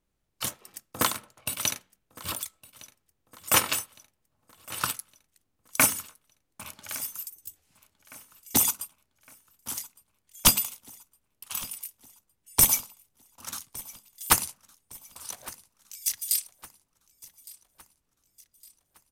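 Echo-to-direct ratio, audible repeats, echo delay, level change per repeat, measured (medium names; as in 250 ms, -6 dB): -20.0 dB, 3, 1161 ms, -6.0 dB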